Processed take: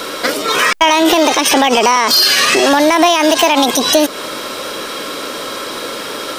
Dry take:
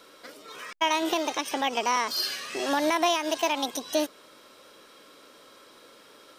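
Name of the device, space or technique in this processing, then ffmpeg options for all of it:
loud club master: -af "acompressor=threshold=0.0282:ratio=2,asoftclip=type=hard:threshold=0.0841,alimiter=level_in=31.6:limit=0.891:release=50:level=0:latency=1,volume=0.891"

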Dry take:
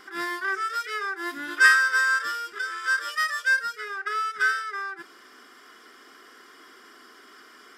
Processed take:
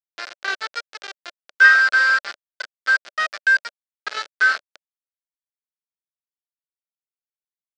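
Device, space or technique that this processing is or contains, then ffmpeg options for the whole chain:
hand-held game console: -af "acrusher=bits=3:mix=0:aa=0.000001,highpass=430,equalizer=f=590:t=q:w=4:g=7,equalizer=f=970:t=q:w=4:g=-5,equalizer=f=1500:t=q:w=4:g=7,lowpass=f=5200:w=0.5412,lowpass=f=5200:w=1.3066"

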